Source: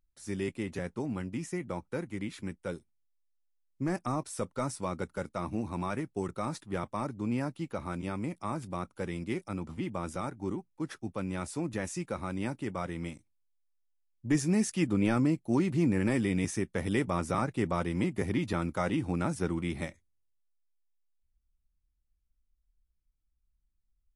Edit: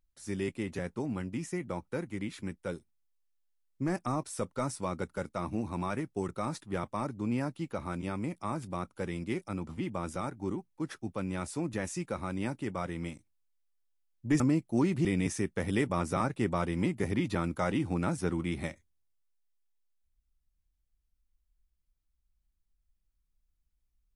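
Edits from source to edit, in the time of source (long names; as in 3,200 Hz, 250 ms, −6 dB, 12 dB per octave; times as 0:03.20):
0:14.40–0:15.16: remove
0:15.81–0:16.23: remove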